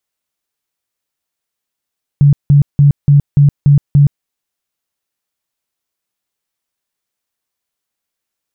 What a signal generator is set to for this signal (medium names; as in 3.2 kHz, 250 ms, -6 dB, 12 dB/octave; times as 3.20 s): tone bursts 143 Hz, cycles 17, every 0.29 s, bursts 7, -3.5 dBFS